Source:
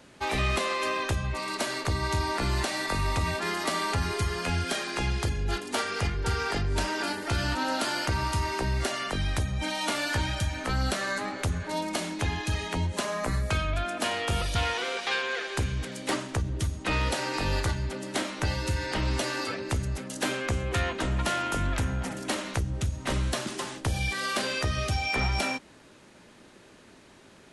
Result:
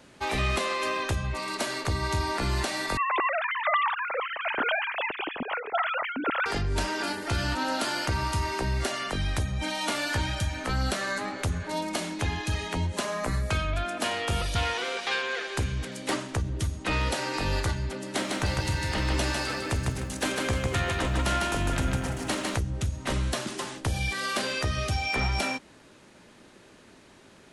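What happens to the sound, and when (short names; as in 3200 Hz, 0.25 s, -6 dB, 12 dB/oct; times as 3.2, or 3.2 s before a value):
2.97–6.46 sine-wave speech
18.04–22.57 lo-fi delay 0.152 s, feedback 35%, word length 10-bit, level -3 dB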